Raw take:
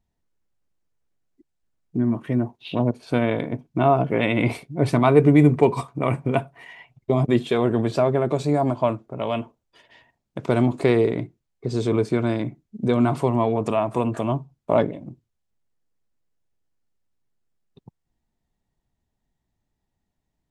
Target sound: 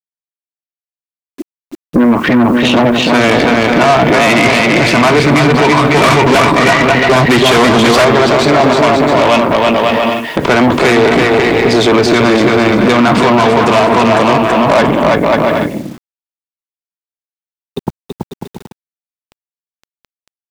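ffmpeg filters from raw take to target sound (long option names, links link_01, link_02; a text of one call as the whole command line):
ffmpeg -i in.wav -filter_complex "[0:a]acrossover=split=130|980|1900[link_01][link_02][link_03][link_04];[link_02]acompressor=threshold=-31dB:ratio=6[link_05];[link_01][link_05][link_03][link_04]amix=inputs=4:normalize=0,equalizer=frequency=120:width_type=o:width=0.78:gain=-13.5,asoftclip=type=tanh:threshold=-26.5dB,aecho=1:1:330|544.5|683.9|774.6|833.5:0.631|0.398|0.251|0.158|0.1,asettb=1/sr,asplit=3[link_06][link_07][link_08];[link_06]atrim=end=5.944[link_09];[link_07]atrim=start=5.94:end=8.05,asetpts=PTS-STARTPTS,afade=type=in:duration=0.004:curve=qsin,afade=type=out:start_time=2.106:duration=0.004:curve=qsin,acontrast=80[link_10];[link_08]atrim=start=8.046[link_11];[link_09][link_10]acrossfade=duration=0.004:curve1=hsin:curve2=qsin[link_12];[link_12][link_11]acrossfade=duration=0.004:curve1=qsin:curve2=hsin,aeval=exprs='0.282*sin(PI/2*3.98*val(0)/0.282)':channel_layout=same,lowpass=6200,aemphasis=mode=reproduction:type=cd,aeval=exprs='0.282*(cos(1*acos(clip(val(0)/0.282,-1,1)))-cos(1*PI/2))+0.0562*(cos(4*acos(clip(val(0)/0.282,-1,1)))-cos(4*PI/2))+0.002*(cos(5*acos(clip(val(0)/0.282,-1,1)))-cos(5*PI/2))':channel_layout=same,highpass=frequency=88:poles=1,acrusher=bits=8:mix=0:aa=0.000001,alimiter=level_in=19dB:limit=-1dB:release=50:level=0:latency=1,volume=-1dB" out.wav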